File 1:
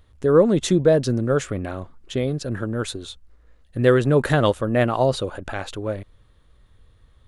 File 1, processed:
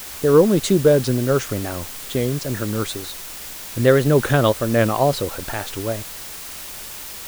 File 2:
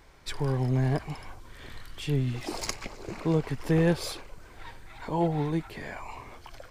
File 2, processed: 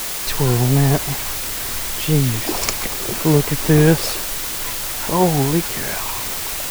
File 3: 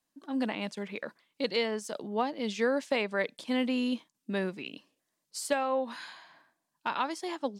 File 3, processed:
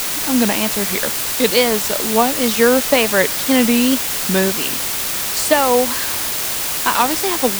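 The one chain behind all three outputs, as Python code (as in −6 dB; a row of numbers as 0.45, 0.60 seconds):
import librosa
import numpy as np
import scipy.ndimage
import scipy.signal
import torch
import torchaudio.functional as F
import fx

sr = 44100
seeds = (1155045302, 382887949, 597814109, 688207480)

y = fx.wow_flutter(x, sr, seeds[0], rate_hz=2.1, depth_cents=130.0)
y = fx.quant_dither(y, sr, seeds[1], bits=6, dither='triangular')
y = y * 10.0 ** (-1.5 / 20.0) / np.max(np.abs(y))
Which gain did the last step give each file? +2.0, +10.5, +14.5 decibels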